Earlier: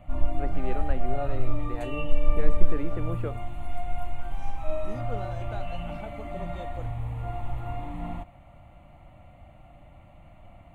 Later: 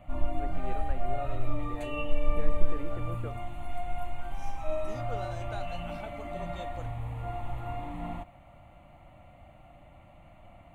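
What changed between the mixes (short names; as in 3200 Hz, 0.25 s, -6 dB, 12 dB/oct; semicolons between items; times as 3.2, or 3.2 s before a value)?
first voice -7.0 dB; second voice: add tilt +2.5 dB/oct; master: add low shelf 190 Hz -5 dB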